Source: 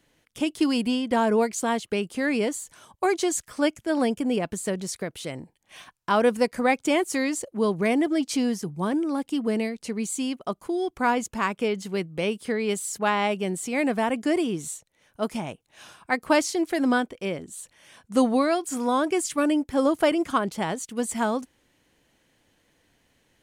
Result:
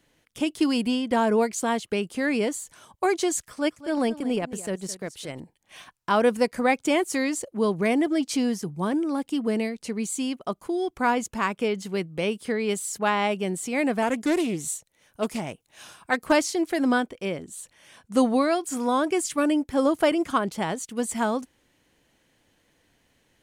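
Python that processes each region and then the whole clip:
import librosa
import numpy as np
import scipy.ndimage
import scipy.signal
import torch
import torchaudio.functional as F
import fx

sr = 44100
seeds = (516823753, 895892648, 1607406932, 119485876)

y = fx.chain(x, sr, fx.transient(attack_db=-5, sustain_db=-9),
    fx.echo_single(ms=214, db=-15.5), at=(3.49, 5.4))
y = fx.chain(y, sr, fx.high_shelf(hz=5800.0, db=6.5),
    fx.doppler_dist(depth_ms=0.21), at=(14.02, 16.32))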